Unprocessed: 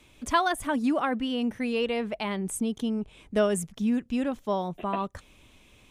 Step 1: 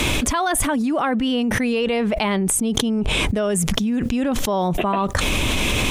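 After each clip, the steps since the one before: fast leveller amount 100%; gain -1 dB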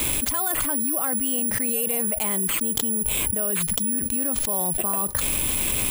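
careless resampling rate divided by 4×, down none, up zero stuff; gain -10 dB

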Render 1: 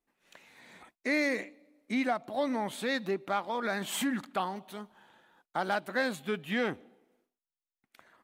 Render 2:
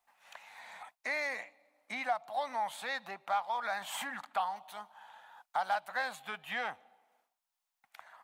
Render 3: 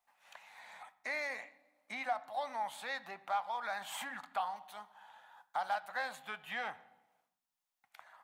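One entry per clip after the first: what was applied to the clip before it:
resonant low shelf 530 Hz -13.5 dB, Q 3; three-band squash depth 40%; gain -4.5 dB
reverb RT60 0.80 s, pre-delay 4 ms, DRR 13 dB; gain -3.5 dB

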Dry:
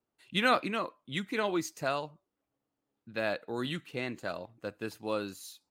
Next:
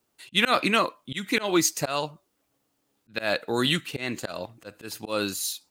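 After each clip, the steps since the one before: high shelf 2400 Hz +9.5 dB; auto swell 0.175 s; gain +9 dB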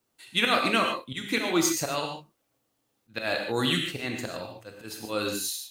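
non-linear reverb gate 0.17 s flat, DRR 2 dB; gain -3.5 dB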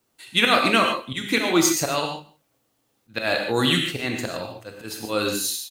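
echo 0.167 s -24 dB; gain +5.5 dB

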